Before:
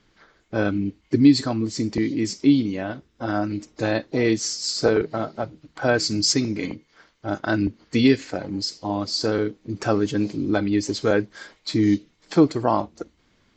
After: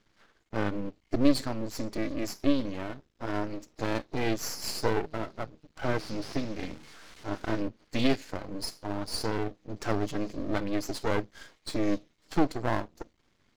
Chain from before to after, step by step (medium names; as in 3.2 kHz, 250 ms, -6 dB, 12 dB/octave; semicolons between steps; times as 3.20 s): 5.85–7.60 s: one-bit delta coder 32 kbps, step -36 dBFS; half-wave rectifier; trim -4 dB